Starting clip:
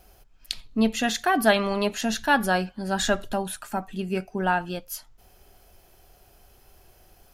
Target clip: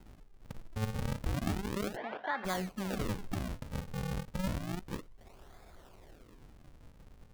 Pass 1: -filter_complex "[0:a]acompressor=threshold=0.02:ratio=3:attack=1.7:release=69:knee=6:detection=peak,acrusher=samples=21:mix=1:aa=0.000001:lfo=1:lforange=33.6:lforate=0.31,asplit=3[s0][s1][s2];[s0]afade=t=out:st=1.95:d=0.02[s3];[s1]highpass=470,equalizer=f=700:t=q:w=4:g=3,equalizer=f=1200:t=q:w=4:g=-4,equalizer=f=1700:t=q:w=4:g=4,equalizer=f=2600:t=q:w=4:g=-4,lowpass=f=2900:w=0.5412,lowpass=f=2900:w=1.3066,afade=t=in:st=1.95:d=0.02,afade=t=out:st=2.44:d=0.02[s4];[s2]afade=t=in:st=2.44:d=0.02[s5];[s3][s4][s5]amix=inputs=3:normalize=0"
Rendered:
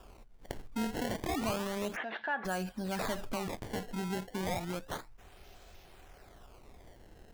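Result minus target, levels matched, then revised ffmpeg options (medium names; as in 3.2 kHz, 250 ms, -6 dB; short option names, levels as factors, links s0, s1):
decimation with a swept rate: distortion -11 dB
-filter_complex "[0:a]acompressor=threshold=0.02:ratio=3:attack=1.7:release=69:knee=6:detection=peak,acrusher=samples=75:mix=1:aa=0.000001:lfo=1:lforange=120:lforate=0.31,asplit=3[s0][s1][s2];[s0]afade=t=out:st=1.95:d=0.02[s3];[s1]highpass=470,equalizer=f=700:t=q:w=4:g=3,equalizer=f=1200:t=q:w=4:g=-4,equalizer=f=1700:t=q:w=4:g=4,equalizer=f=2600:t=q:w=4:g=-4,lowpass=f=2900:w=0.5412,lowpass=f=2900:w=1.3066,afade=t=in:st=1.95:d=0.02,afade=t=out:st=2.44:d=0.02[s4];[s2]afade=t=in:st=2.44:d=0.02[s5];[s3][s4][s5]amix=inputs=3:normalize=0"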